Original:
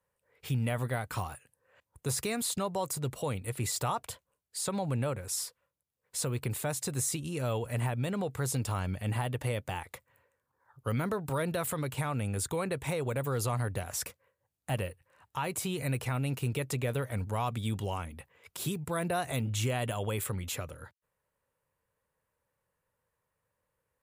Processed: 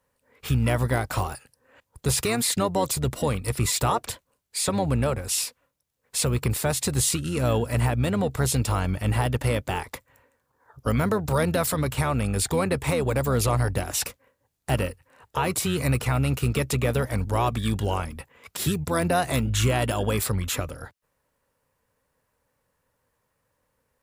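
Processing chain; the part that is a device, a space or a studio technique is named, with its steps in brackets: octave pedal (harmony voices -12 st -8 dB); trim +8 dB

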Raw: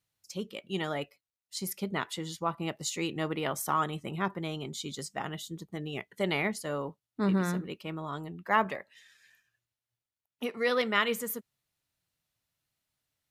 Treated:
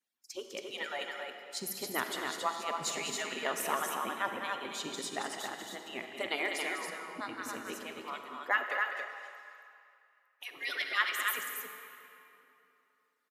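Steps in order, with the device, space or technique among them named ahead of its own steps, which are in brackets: harmonic-percussive separation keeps percussive; stadium PA (high-pass 180 Hz 12 dB/octave; peaking EQ 1.7 kHz +4.5 dB 0.24 oct; loudspeakers at several distances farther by 69 m -9 dB, 94 m -4 dB; reverberation RT60 3.0 s, pre-delay 35 ms, DRR 6 dB); 8.63–10.50 s: high-pass 480 Hz -> 1.4 kHz 12 dB/octave; trim -1.5 dB

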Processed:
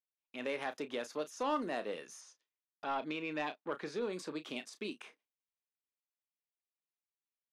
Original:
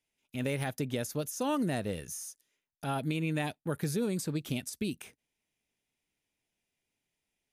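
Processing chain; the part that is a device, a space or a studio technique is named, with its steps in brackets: high-pass 220 Hz 12 dB/octave; intercom (band-pass 340–4200 Hz; peaking EQ 1.1 kHz +7.5 dB 0.38 oct; saturation -26 dBFS, distortion -18 dB; doubling 33 ms -11.5 dB); gate with hold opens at -58 dBFS; 2.21–4.13 s: low-pass 6.3 kHz 12 dB/octave; trim -1 dB

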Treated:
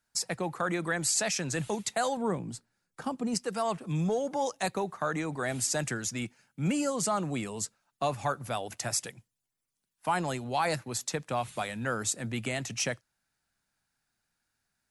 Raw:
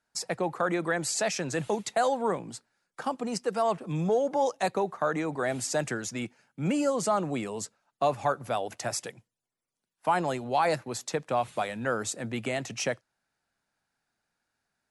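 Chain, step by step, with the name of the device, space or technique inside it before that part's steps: smiley-face EQ (bass shelf 110 Hz +6 dB; peaking EQ 540 Hz -5.5 dB 2 oct; treble shelf 7.3 kHz +7 dB); 2.17–3.35 s: tilt shelf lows +5 dB, about 630 Hz

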